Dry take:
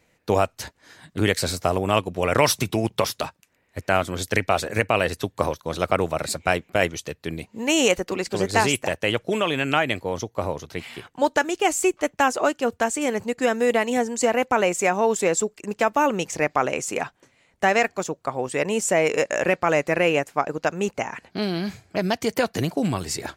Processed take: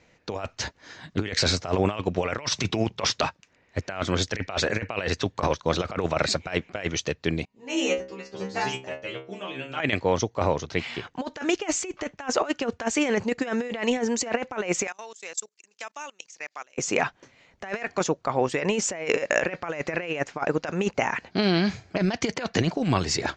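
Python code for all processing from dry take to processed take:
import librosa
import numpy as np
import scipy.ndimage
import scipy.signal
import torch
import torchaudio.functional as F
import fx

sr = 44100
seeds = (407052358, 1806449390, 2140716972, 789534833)

y = fx.chain(x, sr, fx.stiff_resonator(f0_hz=64.0, decay_s=0.63, stiffness=0.002),
    fx.upward_expand(threshold_db=-43.0, expansion=1.5), at=(7.45, 9.8))
y = fx.chain(y, sr, fx.level_steps(step_db=23),
    fx.differentiator(), at=(14.87, 16.78))
y = scipy.signal.sosfilt(scipy.signal.butter(8, 6800.0, 'lowpass', fs=sr, output='sos'), y)
y = fx.dynamic_eq(y, sr, hz=2000.0, q=0.78, threshold_db=-35.0, ratio=4.0, max_db=4)
y = fx.over_compress(y, sr, threshold_db=-24.0, ratio=-0.5)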